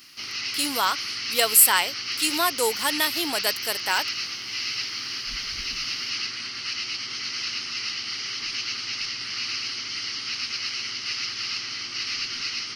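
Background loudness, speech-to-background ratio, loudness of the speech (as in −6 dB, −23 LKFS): −28.0 LKFS, 6.0 dB, −22.0 LKFS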